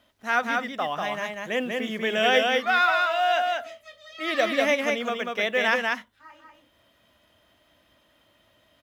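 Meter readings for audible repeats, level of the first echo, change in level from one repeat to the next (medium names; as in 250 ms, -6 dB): 1, -3.0 dB, no regular repeats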